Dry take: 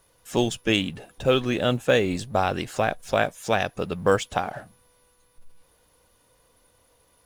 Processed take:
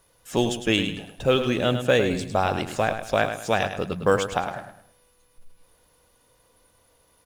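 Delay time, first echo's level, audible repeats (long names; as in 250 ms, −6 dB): 105 ms, −9.0 dB, 3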